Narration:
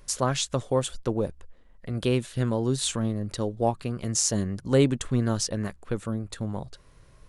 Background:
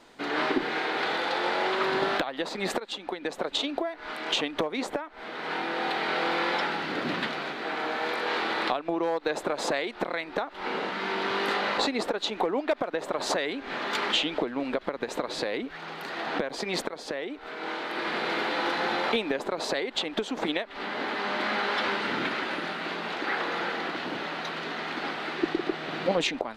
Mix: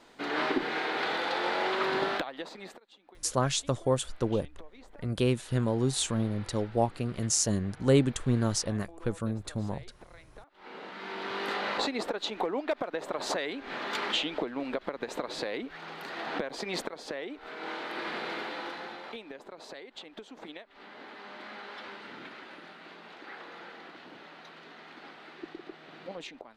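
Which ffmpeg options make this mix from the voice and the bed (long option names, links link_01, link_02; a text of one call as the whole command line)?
ffmpeg -i stem1.wav -i stem2.wav -filter_complex "[0:a]adelay=3150,volume=-2dB[link_01];[1:a]volume=16.5dB,afade=type=out:start_time=2:duration=0.77:silence=0.0944061,afade=type=in:start_time=10.47:duration=1.25:silence=0.112202,afade=type=out:start_time=17.88:duration=1.11:silence=0.251189[link_02];[link_01][link_02]amix=inputs=2:normalize=0" out.wav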